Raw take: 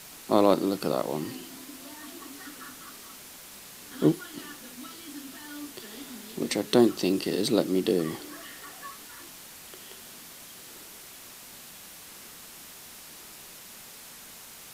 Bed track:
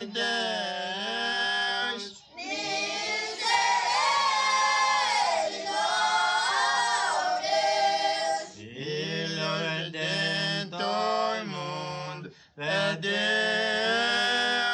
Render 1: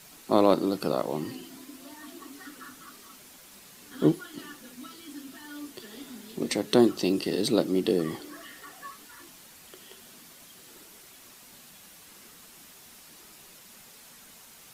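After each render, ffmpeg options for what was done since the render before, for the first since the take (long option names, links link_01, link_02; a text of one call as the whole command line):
ffmpeg -i in.wav -af "afftdn=noise_reduction=6:noise_floor=-47" out.wav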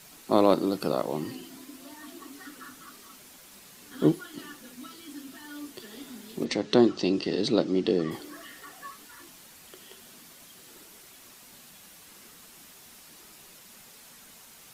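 ffmpeg -i in.wav -filter_complex "[0:a]asplit=3[link_01][link_02][link_03];[link_01]afade=type=out:start_time=6.44:duration=0.02[link_04];[link_02]lowpass=frequency=6200:width=0.5412,lowpass=frequency=6200:width=1.3066,afade=type=in:start_time=6.44:duration=0.02,afade=type=out:start_time=8.1:duration=0.02[link_05];[link_03]afade=type=in:start_time=8.1:duration=0.02[link_06];[link_04][link_05][link_06]amix=inputs=3:normalize=0" out.wav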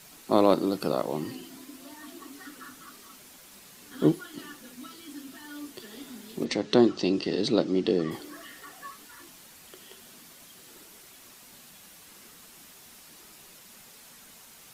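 ffmpeg -i in.wav -af anull out.wav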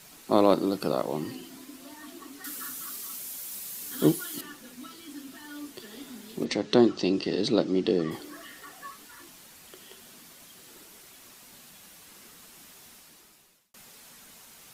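ffmpeg -i in.wav -filter_complex "[0:a]asettb=1/sr,asplit=3[link_01][link_02][link_03];[link_01]atrim=end=2.444[link_04];[link_02]atrim=start=2.44:end=4.41,asetpts=PTS-STARTPTS,afade=type=in:duration=0.004:curve=qsin,afade=type=out:start_time=1.966:duration=0.004:curve=qsin,aemphasis=mode=production:type=75kf[link_05];[link_03]atrim=start=4.406[link_06];[link_04][link_05]acrossfade=duration=0.004:curve1=hsin:curve2=qsin[link_07];[link_07][link_06]acrossfade=duration=0.004:curve1=qsin:curve2=hsin,asplit=2[link_08][link_09];[link_08]atrim=end=13.74,asetpts=PTS-STARTPTS,afade=type=out:start_time=12.86:duration=0.88[link_10];[link_09]atrim=start=13.74,asetpts=PTS-STARTPTS,afade=type=in:duration=0.004:curve=hsin[link_11];[link_10][link_11]concat=n=2:v=0:a=1" out.wav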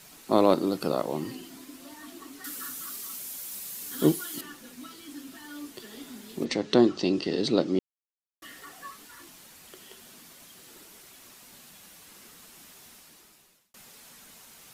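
ffmpeg -i in.wav -filter_complex "[0:a]asplit=3[link_01][link_02][link_03];[link_01]atrim=end=7.79,asetpts=PTS-STARTPTS,afade=type=out:start_time=7.786:duration=0.004:curve=hsin[link_04];[link_02]atrim=start=7.79:end=8.42,asetpts=PTS-STARTPTS,volume=0[link_05];[link_03]atrim=start=8.42,asetpts=PTS-STARTPTS,afade=type=in:duration=0.004:curve=hsin[link_06];[link_04][link_05][link_06]concat=n=3:v=0:a=1" out.wav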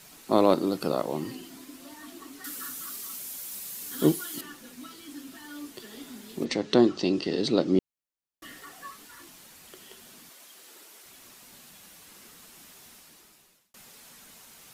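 ffmpeg -i in.wav -filter_complex "[0:a]asettb=1/sr,asplit=3[link_01][link_02][link_03];[link_01]atrim=end=7.664[link_04];[link_02]atrim=start=7.66:end=8.58,asetpts=PTS-STARTPTS,afade=type=in:duration=0.004:curve=qsin,afade=type=out:start_time=0.916:duration=0.004:curve=qsin,lowshelf=frequency=390:gain=6[link_05];[link_03]atrim=start=8.576[link_06];[link_04][link_05]acrossfade=duration=0.004:curve1=hsin:curve2=qsin[link_07];[link_07][link_06]acrossfade=duration=0.004:curve1=qsin:curve2=hsin,asettb=1/sr,asplit=3[link_08][link_09][link_10];[link_08]atrim=end=10.294[link_11];[link_09]atrim=start=10.29:end=11.06,asetpts=PTS-STARTPTS,afade=type=in:duration=0.004:curve=qsin,afade=type=out:start_time=0.766:duration=0.004:curve=qsin,highpass=370[link_12];[link_10]atrim=start=11.056[link_13];[link_11][link_12]acrossfade=duration=0.004:curve1=hsin:curve2=qsin[link_14];[link_14][link_13]acrossfade=duration=0.004:curve1=qsin:curve2=hsin" out.wav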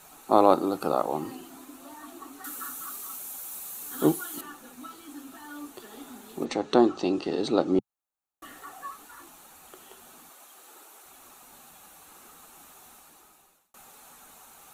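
ffmpeg -i in.wav -af "equalizer=frequency=125:width_type=o:width=0.33:gain=-10,equalizer=frequency=200:width_type=o:width=0.33:gain=-6,equalizer=frequency=800:width_type=o:width=0.33:gain=10,equalizer=frequency=1250:width_type=o:width=0.33:gain=7,equalizer=frequency=2000:width_type=o:width=0.33:gain=-6,equalizer=frequency=3150:width_type=o:width=0.33:gain=-5,equalizer=frequency=5000:width_type=o:width=0.33:gain=-11" out.wav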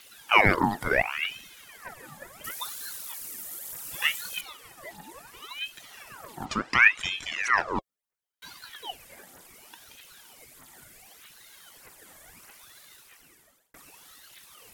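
ffmpeg -i in.wav -af "aphaser=in_gain=1:out_gain=1:delay=1.9:decay=0.7:speed=1.6:type=triangular,aeval=exprs='val(0)*sin(2*PI*1700*n/s+1700*0.7/0.7*sin(2*PI*0.7*n/s))':channel_layout=same" out.wav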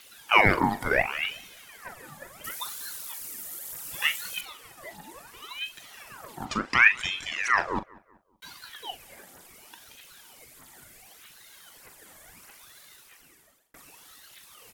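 ffmpeg -i in.wav -filter_complex "[0:a]asplit=2[link_01][link_02];[link_02]adelay=41,volume=-13dB[link_03];[link_01][link_03]amix=inputs=2:normalize=0,asplit=2[link_04][link_05];[link_05]adelay=191,lowpass=frequency=2000:poles=1,volume=-23dB,asplit=2[link_06][link_07];[link_07]adelay=191,lowpass=frequency=2000:poles=1,volume=0.46,asplit=2[link_08][link_09];[link_09]adelay=191,lowpass=frequency=2000:poles=1,volume=0.46[link_10];[link_04][link_06][link_08][link_10]amix=inputs=4:normalize=0" out.wav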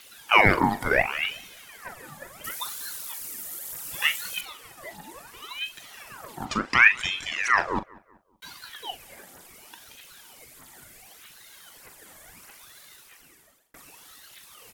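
ffmpeg -i in.wav -af "volume=2dB,alimiter=limit=-3dB:level=0:latency=1" out.wav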